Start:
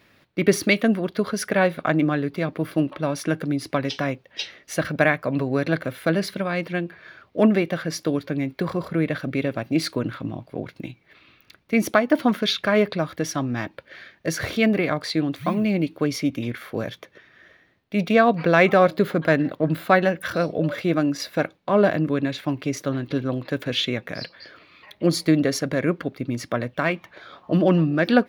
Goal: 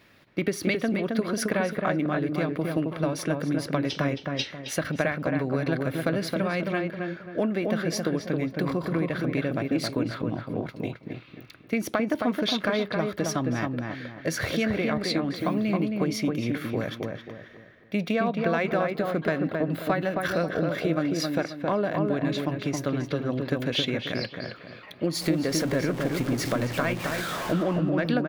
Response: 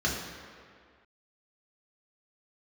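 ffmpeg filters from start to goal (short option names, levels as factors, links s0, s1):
-filter_complex "[0:a]asettb=1/sr,asplit=3[s0][s1][s2];[s0]atrim=end=25.154[s3];[s1]atrim=start=25.15:end=27.63,asetpts=PTS-STARTPTS,afade=t=in:d=0.004:c=qsin,afade=t=out:st=2.476:d=0.004:c=qsin,aeval=exprs='val(0)+0.5*0.0376*sgn(val(0))':c=same[s4];[s2]atrim=start=27.626[s5];[s3][s4]acrossfade=d=0.004:c1=hsin:c2=qsin[s6];[s6][s5]acrossfade=d=0.004:c1=qsin:c2=hsin,acompressor=threshold=0.0708:ratio=6,asplit=2[s7][s8];[s8]adelay=268,lowpass=f=1700:p=1,volume=0.708,asplit=2[s9][s10];[s10]adelay=268,lowpass=f=1700:p=1,volume=0.37,asplit=2[s11][s12];[s12]adelay=268,lowpass=f=1700:p=1,volume=0.37,asplit=2[s13][s14];[s14]adelay=268,lowpass=f=1700:p=1,volume=0.37,asplit=2[s15][s16];[s16]adelay=268,lowpass=f=1700:p=1,volume=0.37[s17];[s7][s9][s11][s13][s15][s17]amix=inputs=6:normalize=0"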